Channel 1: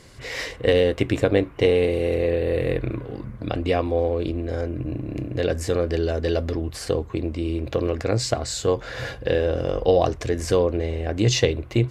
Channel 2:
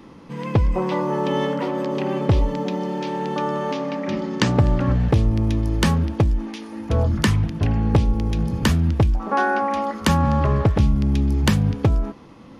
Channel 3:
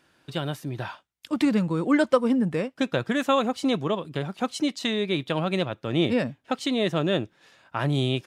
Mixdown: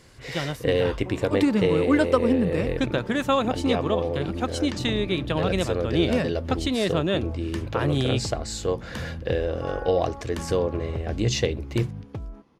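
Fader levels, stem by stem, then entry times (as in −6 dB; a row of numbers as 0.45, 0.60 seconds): −4.5, −17.0, 0.0 decibels; 0.00, 0.30, 0.00 seconds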